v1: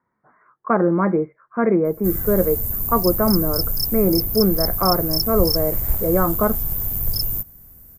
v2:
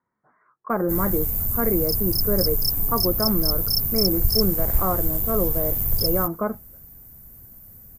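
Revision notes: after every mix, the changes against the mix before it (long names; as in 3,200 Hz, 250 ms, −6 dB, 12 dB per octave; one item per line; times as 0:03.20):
speech −6.0 dB
background: entry −1.15 s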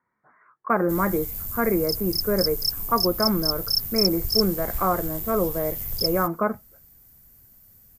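background −10.0 dB
master: add parametric band 4,100 Hz +12 dB 2.7 octaves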